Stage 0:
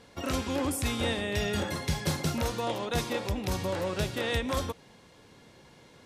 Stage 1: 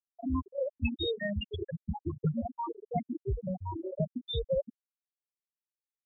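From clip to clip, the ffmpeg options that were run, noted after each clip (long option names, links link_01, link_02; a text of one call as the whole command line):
ffmpeg -i in.wav -af "afftfilt=real='re*pow(10,24/40*sin(2*PI*(0.59*log(max(b,1)*sr/1024/100)/log(2)-(1.8)*(pts-256)/sr)))':imag='im*pow(10,24/40*sin(2*PI*(0.59*log(max(b,1)*sr/1024/100)/log(2)-(1.8)*(pts-256)/sr)))':win_size=1024:overlap=0.75,afftfilt=real='re*gte(hypot(re,im),0.316)':imag='im*gte(hypot(re,im),0.316)':win_size=1024:overlap=0.75,volume=-5.5dB" out.wav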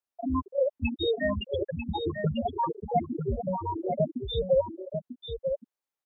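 ffmpeg -i in.wav -af "equalizer=frequency=770:width_type=o:width=2.4:gain=8.5,aecho=1:1:944:0.447" out.wav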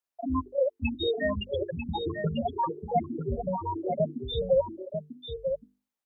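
ffmpeg -i in.wav -af "bandreject=frequency=50:width_type=h:width=6,bandreject=frequency=100:width_type=h:width=6,bandreject=frequency=150:width_type=h:width=6,bandreject=frequency=200:width_type=h:width=6,bandreject=frequency=250:width_type=h:width=6,bandreject=frequency=300:width_type=h:width=6,bandreject=frequency=350:width_type=h:width=6,bandreject=frequency=400:width_type=h:width=6,bandreject=frequency=450:width_type=h:width=6" out.wav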